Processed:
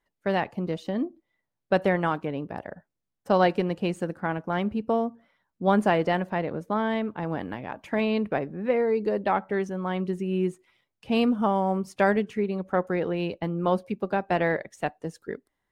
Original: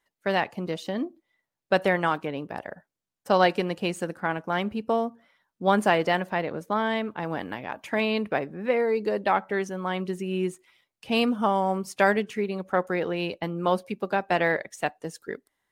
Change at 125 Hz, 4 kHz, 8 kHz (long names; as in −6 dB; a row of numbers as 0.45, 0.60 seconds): +3.0 dB, −5.5 dB, can't be measured